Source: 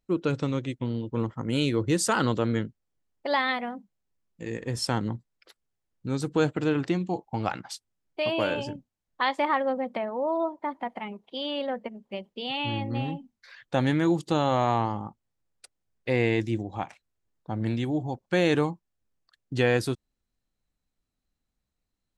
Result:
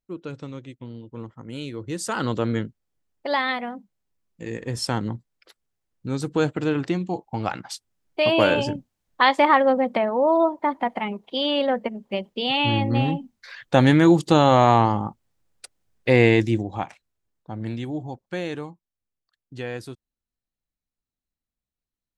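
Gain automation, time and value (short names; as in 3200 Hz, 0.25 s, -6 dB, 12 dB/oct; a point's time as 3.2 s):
1.8 s -8 dB
2.4 s +2 dB
7.45 s +2 dB
8.4 s +8.5 dB
16.26 s +8.5 dB
17.51 s -2 dB
18.12 s -2 dB
18.59 s -9 dB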